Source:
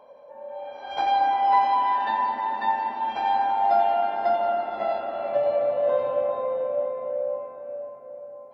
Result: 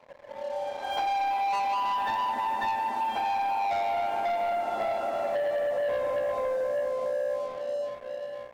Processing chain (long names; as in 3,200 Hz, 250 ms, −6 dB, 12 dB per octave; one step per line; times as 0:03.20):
leveller curve on the samples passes 3
downward compressor, threshold −19 dBFS, peak gain reduction 6.5 dB
level −7.5 dB